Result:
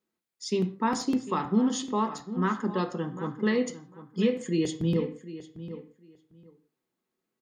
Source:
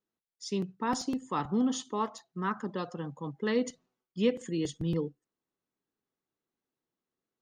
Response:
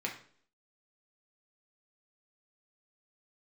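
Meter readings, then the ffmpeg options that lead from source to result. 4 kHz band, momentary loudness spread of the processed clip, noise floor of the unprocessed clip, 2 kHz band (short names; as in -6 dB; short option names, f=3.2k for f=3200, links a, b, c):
+3.0 dB, 15 LU, under -85 dBFS, +4.0 dB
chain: -filter_complex "[0:a]asplit=2[a][b];[b]adelay=750,lowpass=f=3.8k:p=1,volume=-14dB,asplit=2[c][d];[d]adelay=750,lowpass=f=3.8k:p=1,volume=0.18[e];[c][e]amix=inputs=2:normalize=0[f];[a][f]amix=inputs=2:normalize=0,alimiter=limit=-22.5dB:level=0:latency=1:release=208,asplit=2[g][h];[1:a]atrim=start_sample=2205,afade=t=out:st=0.23:d=0.01,atrim=end_sample=10584[i];[h][i]afir=irnorm=-1:irlink=0,volume=-2dB[j];[g][j]amix=inputs=2:normalize=0"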